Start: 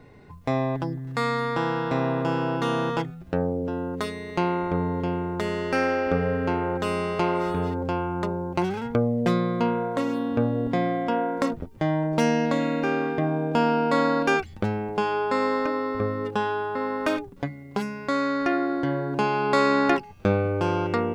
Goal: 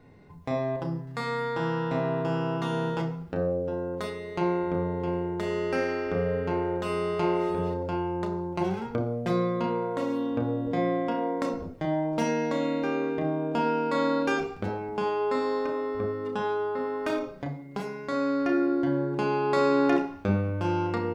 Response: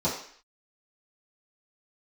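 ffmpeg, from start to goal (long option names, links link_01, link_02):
-filter_complex "[0:a]asplit=2[link_01][link_02];[link_02]adelay=32,volume=-12dB[link_03];[link_01][link_03]amix=inputs=2:normalize=0,asplit=2[link_04][link_05];[1:a]atrim=start_sample=2205,adelay=30[link_06];[link_05][link_06]afir=irnorm=-1:irlink=0,volume=-15dB[link_07];[link_04][link_07]amix=inputs=2:normalize=0,volume=-6.5dB"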